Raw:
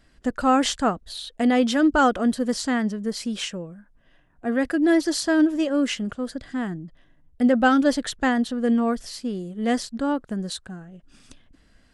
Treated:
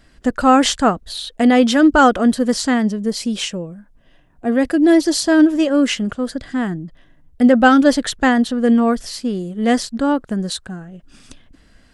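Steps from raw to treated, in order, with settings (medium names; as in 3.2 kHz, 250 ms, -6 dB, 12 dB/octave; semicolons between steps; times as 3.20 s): 2.74–5.32 s: peaking EQ 1.5 kHz -5.5 dB 0.95 oct; trim +7 dB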